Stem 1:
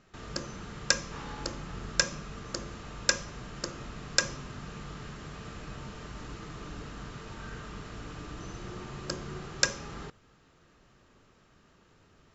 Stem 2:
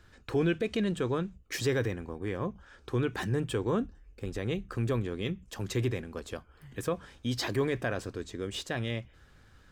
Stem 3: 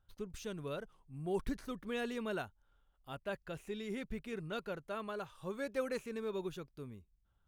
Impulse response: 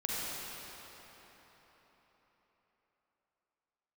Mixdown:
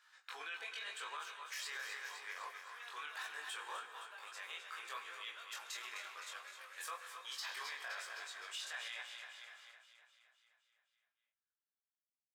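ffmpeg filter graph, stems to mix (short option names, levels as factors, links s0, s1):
-filter_complex "[1:a]flanger=delay=19:depth=5.9:speed=0.96,volume=1.26,asplit=3[s0][s1][s2];[s1]volume=0.188[s3];[s2]volume=0.376[s4];[2:a]acompressor=threshold=0.0112:ratio=6,adelay=850,volume=0.708,asplit=2[s5][s6];[s6]volume=0.562[s7];[3:a]atrim=start_sample=2205[s8];[s3][s8]afir=irnorm=-1:irlink=0[s9];[s4][s7]amix=inputs=2:normalize=0,aecho=0:1:257|514|771|1028|1285|1542|1799|2056|2313:1|0.59|0.348|0.205|0.121|0.0715|0.0422|0.0249|0.0147[s10];[s0][s5][s9][s10]amix=inputs=4:normalize=0,highpass=f=980:w=0.5412,highpass=f=980:w=1.3066,flanger=delay=17:depth=4.4:speed=0.21,alimiter=level_in=3.55:limit=0.0631:level=0:latency=1:release=30,volume=0.282"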